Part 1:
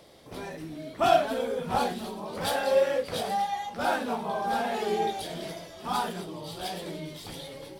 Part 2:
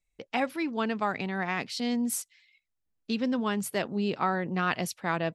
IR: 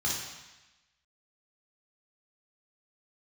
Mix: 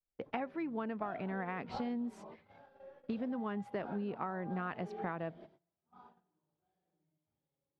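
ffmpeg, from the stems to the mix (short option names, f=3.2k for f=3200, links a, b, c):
-filter_complex "[0:a]volume=-12.5dB,asplit=2[a][b];[b]volume=-23.5dB[c];[1:a]volume=1.5dB,asplit=2[d][e];[e]apad=whole_len=343869[f];[a][f]sidechaingate=range=-31dB:threshold=-48dB:ratio=16:detection=peak[g];[2:a]atrim=start_sample=2205[h];[c][h]afir=irnorm=-1:irlink=0[i];[g][d][i]amix=inputs=3:normalize=0,lowpass=1.6k,agate=range=-19dB:threshold=-58dB:ratio=16:detection=peak,acompressor=threshold=-35dB:ratio=10"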